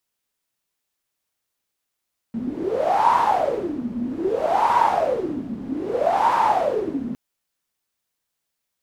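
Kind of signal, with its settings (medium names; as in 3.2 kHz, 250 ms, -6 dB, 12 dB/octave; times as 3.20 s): wind-like swept noise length 4.81 s, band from 230 Hz, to 960 Hz, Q 12, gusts 3, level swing 11.5 dB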